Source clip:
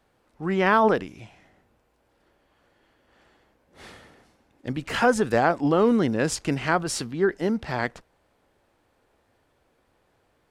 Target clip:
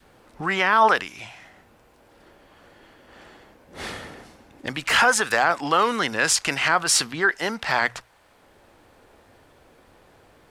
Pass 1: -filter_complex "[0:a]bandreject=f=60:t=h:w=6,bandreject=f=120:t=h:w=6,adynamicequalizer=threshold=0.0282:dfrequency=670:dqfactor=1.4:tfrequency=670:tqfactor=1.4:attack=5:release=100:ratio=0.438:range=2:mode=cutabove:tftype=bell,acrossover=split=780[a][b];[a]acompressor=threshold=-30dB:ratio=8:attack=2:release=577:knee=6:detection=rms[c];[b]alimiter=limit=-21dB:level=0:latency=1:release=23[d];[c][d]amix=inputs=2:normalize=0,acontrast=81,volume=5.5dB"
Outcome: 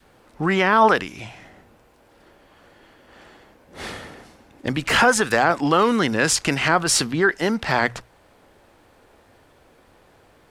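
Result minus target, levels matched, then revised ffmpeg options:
compressor: peak gain reduction -10 dB
-filter_complex "[0:a]bandreject=f=60:t=h:w=6,bandreject=f=120:t=h:w=6,adynamicequalizer=threshold=0.0282:dfrequency=670:dqfactor=1.4:tfrequency=670:tqfactor=1.4:attack=5:release=100:ratio=0.438:range=2:mode=cutabove:tftype=bell,acrossover=split=780[a][b];[a]acompressor=threshold=-41.5dB:ratio=8:attack=2:release=577:knee=6:detection=rms[c];[b]alimiter=limit=-21dB:level=0:latency=1:release=23[d];[c][d]amix=inputs=2:normalize=0,acontrast=81,volume=5.5dB"

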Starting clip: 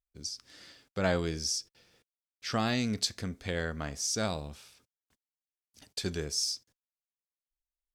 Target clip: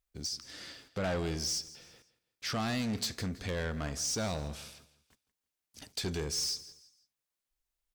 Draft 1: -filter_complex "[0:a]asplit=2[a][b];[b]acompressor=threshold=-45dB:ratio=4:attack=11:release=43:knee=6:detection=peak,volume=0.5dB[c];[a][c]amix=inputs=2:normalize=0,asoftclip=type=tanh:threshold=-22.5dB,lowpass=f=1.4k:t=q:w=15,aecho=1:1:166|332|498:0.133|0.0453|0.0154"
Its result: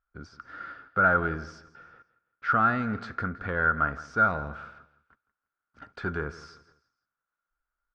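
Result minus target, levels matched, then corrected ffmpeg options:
1000 Hz band +9.0 dB; soft clip: distortion -6 dB
-filter_complex "[0:a]asplit=2[a][b];[b]acompressor=threshold=-45dB:ratio=4:attack=11:release=43:knee=6:detection=peak,volume=0.5dB[c];[a][c]amix=inputs=2:normalize=0,asoftclip=type=tanh:threshold=-29dB,aecho=1:1:166|332|498:0.133|0.0453|0.0154"

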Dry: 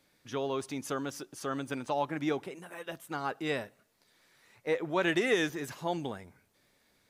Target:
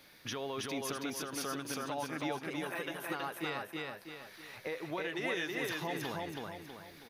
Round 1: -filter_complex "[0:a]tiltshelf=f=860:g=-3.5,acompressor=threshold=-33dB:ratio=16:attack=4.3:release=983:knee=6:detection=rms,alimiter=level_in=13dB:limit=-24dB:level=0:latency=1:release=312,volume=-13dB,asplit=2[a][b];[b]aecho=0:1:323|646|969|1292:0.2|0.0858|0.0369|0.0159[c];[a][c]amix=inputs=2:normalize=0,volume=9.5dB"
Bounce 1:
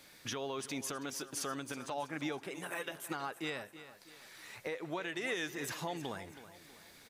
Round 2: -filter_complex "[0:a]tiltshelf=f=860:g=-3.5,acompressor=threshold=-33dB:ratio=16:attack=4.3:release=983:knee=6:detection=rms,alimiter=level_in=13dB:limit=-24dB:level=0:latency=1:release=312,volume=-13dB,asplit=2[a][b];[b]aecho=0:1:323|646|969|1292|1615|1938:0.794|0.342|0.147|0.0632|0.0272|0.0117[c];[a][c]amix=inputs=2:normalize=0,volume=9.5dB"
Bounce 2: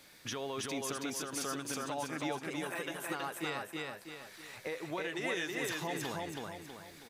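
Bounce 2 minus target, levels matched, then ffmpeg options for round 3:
8000 Hz band +3.5 dB
-filter_complex "[0:a]tiltshelf=f=860:g=-3.5,acompressor=threshold=-33dB:ratio=16:attack=4.3:release=983:knee=6:detection=rms,equalizer=f=7.7k:t=o:w=0.41:g=-13.5,alimiter=level_in=13dB:limit=-24dB:level=0:latency=1:release=312,volume=-13dB,asplit=2[a][b];[b]aecho=0:1:323|646|969|1292|1615|1938:0.794|0.342|0.147|0.0632|0.0272|0.0117[c];[a][c]amix=inputs=2:normalize=0,volume=9.5dB"

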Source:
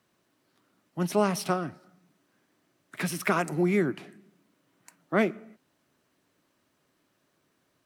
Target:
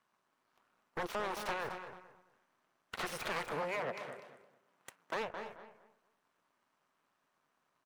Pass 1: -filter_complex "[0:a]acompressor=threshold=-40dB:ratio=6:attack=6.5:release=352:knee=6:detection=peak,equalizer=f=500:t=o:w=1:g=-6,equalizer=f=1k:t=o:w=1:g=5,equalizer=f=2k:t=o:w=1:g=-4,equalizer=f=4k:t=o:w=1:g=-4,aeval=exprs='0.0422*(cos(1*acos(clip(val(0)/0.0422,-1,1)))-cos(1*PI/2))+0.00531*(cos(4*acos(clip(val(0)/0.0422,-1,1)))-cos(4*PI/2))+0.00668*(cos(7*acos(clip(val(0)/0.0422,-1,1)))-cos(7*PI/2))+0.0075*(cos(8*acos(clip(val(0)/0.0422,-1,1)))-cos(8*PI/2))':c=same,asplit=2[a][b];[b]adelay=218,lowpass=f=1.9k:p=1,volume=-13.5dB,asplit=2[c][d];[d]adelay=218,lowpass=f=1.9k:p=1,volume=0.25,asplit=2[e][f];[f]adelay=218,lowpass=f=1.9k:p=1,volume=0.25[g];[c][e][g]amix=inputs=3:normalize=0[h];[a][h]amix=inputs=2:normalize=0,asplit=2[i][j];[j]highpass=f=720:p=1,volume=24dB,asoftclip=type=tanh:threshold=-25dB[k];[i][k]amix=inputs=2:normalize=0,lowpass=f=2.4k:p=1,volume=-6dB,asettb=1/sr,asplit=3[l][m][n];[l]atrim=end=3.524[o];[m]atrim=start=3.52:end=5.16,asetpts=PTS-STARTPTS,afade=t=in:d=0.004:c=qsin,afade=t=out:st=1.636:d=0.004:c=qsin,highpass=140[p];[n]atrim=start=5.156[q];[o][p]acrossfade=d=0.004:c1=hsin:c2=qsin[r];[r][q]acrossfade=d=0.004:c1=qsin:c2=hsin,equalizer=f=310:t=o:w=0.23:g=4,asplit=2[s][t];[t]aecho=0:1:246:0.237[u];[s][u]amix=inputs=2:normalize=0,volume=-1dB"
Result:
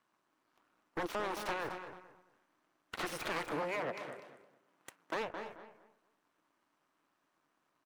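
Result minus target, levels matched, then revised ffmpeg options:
250 Hz band +3.5 dB
-filter_complex "[0:a]acompressor=threshold=-40dB:ratio=6:attack=6.5:release=352:knee=6:detection=peak,equalizer=f=500:t=o:w=1:g=-6,equalizer=f=1k:t=o:w=1:g=5,equalizer=f=2k:t=o:w=1:g=-4,equalizer=f=4k:t=o:w=1:g=-4,aeval=exprs='0.0422*(cos(1*acos(clip(val(0)/0.0422,-1,1)))-cos(1*PI/2))+0.00531*(cos(4*acos(clip(val(0)/0.0422,-1,1)))-cos(4*PI/2))+0.00668*(cos(7*acos(clip(val(0)/0.0422,-1,1)))-cos(7*PI/2))+0.0075*(cos(8*acos(clip(val(0)/0.0422,-1,1)))-cos(8*PI/2))':c=same,asplit=2[a][b];[b]adelay=218,lowpass=f=1.9k:p=1,volume=-13.5dB,asplit=2[c][d];[d]adelay=218,lowpass=f=1.9k:p=1,volume=0.25,asplit=2[e][f];[f]adelay=218,lowpass=f=1.9k:p=1,volume=0.25[g];[c][e][g]amix=inputs=3:normalize=0[h];[a][h]amix=inputs=2:normalize=0,asplit=2[i][j];[j]highpass=f=720:p=1,volume=24dB,asoftclip=type=tanh:threshold=-25dB[k];[i][k]amix=inputs=2:normalize=0,lowpass=f=2.4k:p=1,volume=-6dB,asettb=1/sr,asplit=3[l][m][n];[l]atrim=end=3.524[o];[m]atrim=start=3.52:end=5.16,asetpts=PTS-STARTPTS,afade=t=in:d=0.004:c=qsin,afade=t=out:st=1.636:d=0.004:c=qsin,highpass=140[p];[n]atrim=start=5.156[q];[o][p]acrossfade=d=0.004:c1=hsin:c2=qsin[r];[r][q]acrossfade=d=0.004:c1=qsin:c2=hsin,equalizer=f=310:t=o:w=0.23:g=-8,asplit=2[s][t];[t]aecho=0:1:246:0.237[u];[s][u]amix=inputs=2:normalize=0,volume=-1dB"

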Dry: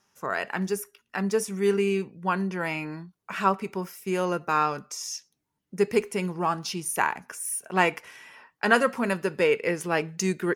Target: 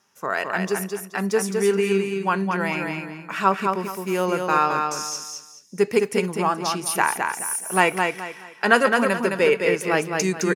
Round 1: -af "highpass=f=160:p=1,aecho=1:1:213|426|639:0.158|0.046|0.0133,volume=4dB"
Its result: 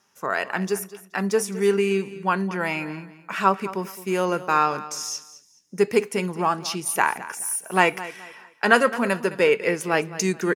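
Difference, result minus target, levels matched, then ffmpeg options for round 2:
echo-to-direct -11.5 dB
-af "highpass=f=160:p=1,aecho=1:1:213|426|639|852:0.596|0.173|0.0501|0.0145,volume=4dB"

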